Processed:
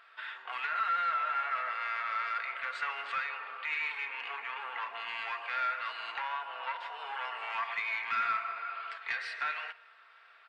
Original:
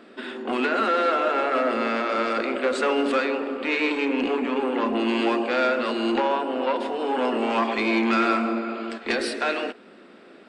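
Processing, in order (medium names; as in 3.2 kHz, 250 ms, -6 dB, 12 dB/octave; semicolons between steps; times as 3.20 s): high-pass 1.1 kHz 24 dB/octave; dynamic bell 2 kHz, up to +6 dB, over -45 dBFS, Q 3.9; comb 4.4 ms, depth 40%; in parallel at +2 dB: compression 20:1, threshold -33 dBFS, peak gain reduction 16 dB; on the sum: wow and flutter 19 cents; companded quantiser 8-bit; saturation -10.5 dBFS, distortion -25 dB; tape spacing loss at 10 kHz 26 dB; on a send at -22 dB: reverberation RT60 0.10 s, pre-delay 152 ms; on the sum: trim -6 dB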